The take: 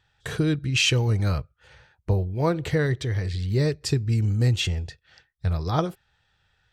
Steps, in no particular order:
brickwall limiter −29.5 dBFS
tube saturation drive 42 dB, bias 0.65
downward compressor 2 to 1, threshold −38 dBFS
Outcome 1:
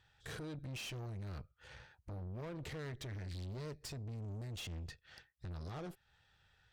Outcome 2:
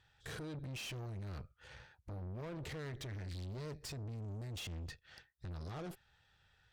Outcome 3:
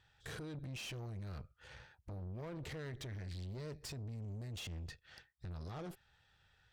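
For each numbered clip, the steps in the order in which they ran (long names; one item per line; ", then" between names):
downward compressor, then brickwall limiter, then tube saturation
brickwall limiter, then tube saturation, then downward compressor
brickwall limiter, then downward compressor, then tube saturation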